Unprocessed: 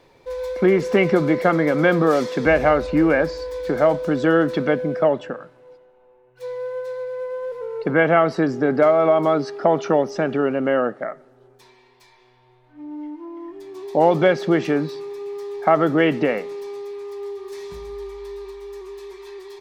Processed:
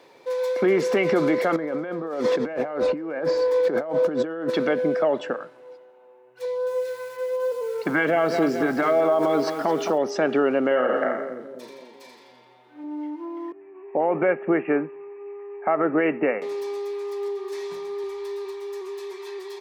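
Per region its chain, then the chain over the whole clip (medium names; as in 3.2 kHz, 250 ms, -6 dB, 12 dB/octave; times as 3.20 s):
1.56–4.50 s: compressor with a negative ratio -27 dBFS + treble shelf 2.2 kHz -11.5 dB
6.45–9.98 s: LFO notch sine 1.2 Hz 460–2200 Hz + bit-crushed delay 216 ms, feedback 55%, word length 7-bit, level -10.5 dB
10.67–12.84 s: doubling 39 ms -7 dB + two-band feedback delay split 420 Hz, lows 254 ms, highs 85 ms, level -6 dB
13.52–16.42 s: steep low-pass 2.7 kHz 96 dB/octave + upward expansion, over -33 dBFS
17.28–18.04 s: high-pass 95 Hz + treble shelf 5.1 kHz -5 dB
whole clip: high-pass 270 Hz 12 dB/octave; peak limiter -15.5 dBFS; trim +3 dB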